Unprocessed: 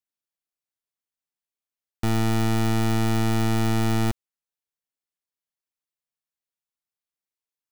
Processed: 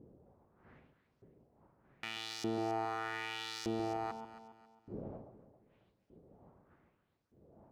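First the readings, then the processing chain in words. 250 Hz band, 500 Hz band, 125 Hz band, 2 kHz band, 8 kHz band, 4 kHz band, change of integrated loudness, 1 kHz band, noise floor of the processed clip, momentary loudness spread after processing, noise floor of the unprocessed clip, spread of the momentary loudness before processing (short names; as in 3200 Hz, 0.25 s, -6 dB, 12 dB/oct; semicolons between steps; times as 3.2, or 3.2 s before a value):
-17.0 dB, -9.0 dB, -26.0 dB, -10.0 dB, -15.5 dB, -9.0 dB, -16.0 dB, -8.5 dB, -78 dBFS, 16 LU, under -85 dBFS, 5 LU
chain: wind noise 120 Hz -37 dBFS; compressor, threshold -27 dBFS, peak gain reduction 8.5 dB; LFO band-pass saw up 0.82 Hz 380–5600 Hz; echo with dull and thin repeats by turns 0.136 s, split 1100 Hz, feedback 58%, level -7 dB; gain +3 dB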